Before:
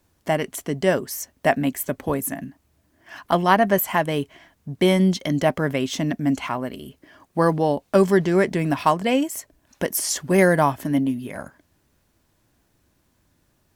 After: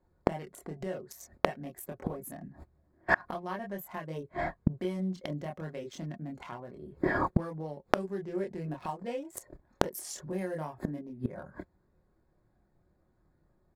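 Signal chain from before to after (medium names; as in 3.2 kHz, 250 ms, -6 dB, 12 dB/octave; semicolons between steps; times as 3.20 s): local Wiener filter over 15 samples; peaking EQ 440 Hz +3.5 dB 1.4 oct; compression 3:1, threshold -34 dBFS, peak gain reduction 18 dB; chorus voices 6, 0.44 Hz, delay 26 ms, depth 1.4 ms; gate -55 dBFS, range -30 dB; comb 5.5 ms, depth 32%; inverted gate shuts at -36 dBFS, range -30 dB; loudness maximiser +27.5 dB; trim -1 dB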